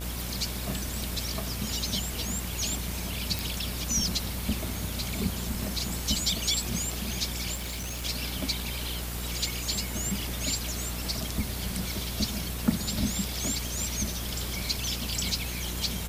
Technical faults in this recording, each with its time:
buzz 60 Hz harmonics 29 -36 dBFS
3.39 pop
7.54–8.05 clipped -31.5 dBFS

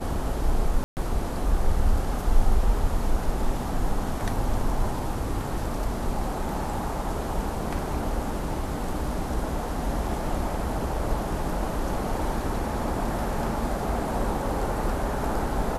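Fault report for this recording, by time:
0.84–0.97 gap 0.129 s

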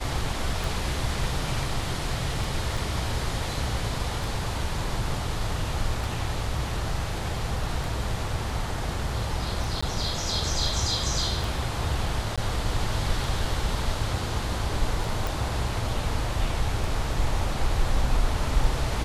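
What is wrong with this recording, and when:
tick 33 1/3 rpm
2.77 gap 3.3 ms
9.81–9.82 gap 15 ms
12.36–12.38 gap 16 ms
15.27 pop

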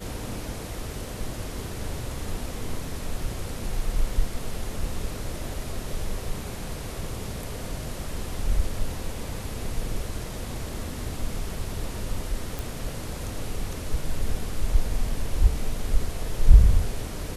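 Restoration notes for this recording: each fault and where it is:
12.59 pop

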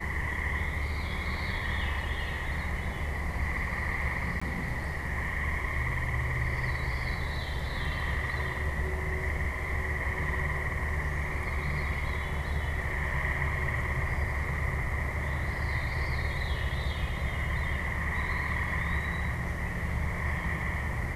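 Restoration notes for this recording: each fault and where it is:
4.4–4.42 gap 15 ms

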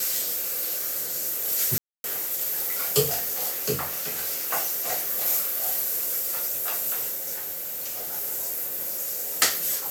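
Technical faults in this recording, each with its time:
1.78–2.04 gap 0.261 s
7.34–8.13 clipped -29 dBFS

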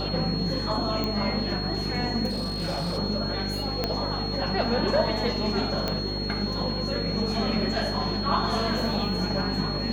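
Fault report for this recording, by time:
buzz 50 Hz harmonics 9 -32 dBFS
tone 4300 Hz -32 dBFS
1.04 pop -16 dBFS
2.29–2.99 clipped -25 dBFS
3.84 pop -11 dBFS
5.88 pop -13 dBFS

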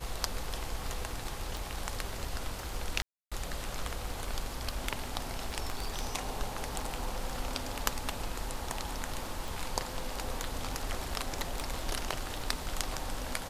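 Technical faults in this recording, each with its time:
crackle 13/s -40 dBFS
1.57 pop
3.02–3.32 gap 0.296 s
5.7–6.16 clipped -27 dBFS
9.48 pop
11.41–11.78 clipped -26.5 dBFS

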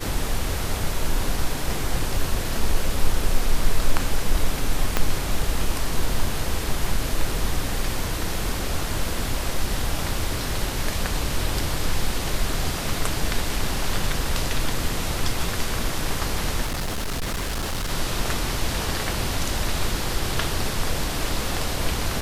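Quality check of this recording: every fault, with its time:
4.97 pop -4 dBFS
16.65–17.92 clipped -23 dBFS

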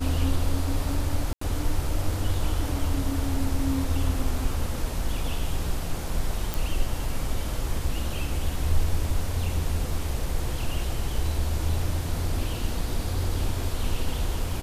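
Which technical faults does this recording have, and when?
1.33–1.41 gap 84 ms
6.54 pop

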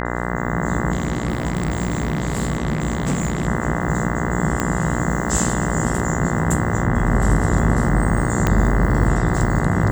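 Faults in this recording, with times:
buzz 60 Hz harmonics 34 -24 dBFS
0.92–3.47 clipped -16 dBFS
4.6 pop -6 dBFS
8.47 pop -4 dBFS

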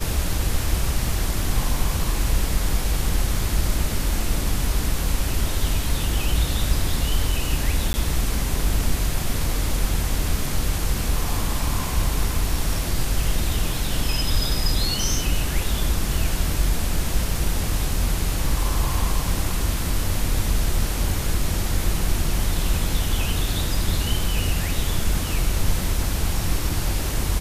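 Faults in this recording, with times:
7.93–7.94 gap 10 ms

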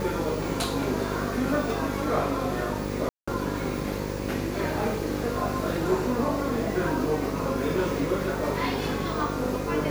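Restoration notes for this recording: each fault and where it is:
buzz 50 Hz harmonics 11 -32 dBFS
3.09–3.27 gap 0.185 s

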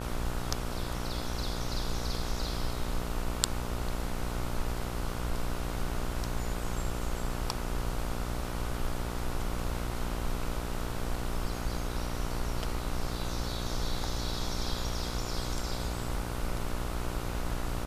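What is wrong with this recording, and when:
buzz 60 Hz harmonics 25 -37 dBFS

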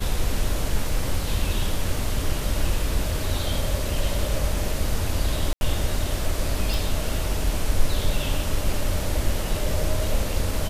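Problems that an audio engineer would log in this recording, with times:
5.53–5.61 gap 81 ms
6.74 pop

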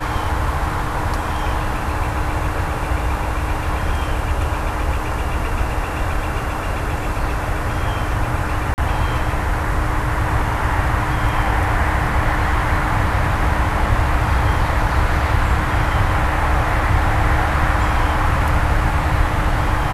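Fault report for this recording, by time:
8.74–8.78 gap 39 ms

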